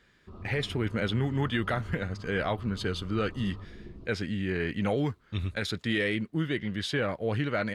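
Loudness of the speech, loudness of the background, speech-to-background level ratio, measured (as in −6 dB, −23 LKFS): −31.0 LKFS, −45.5 LKFS, 14.5 dB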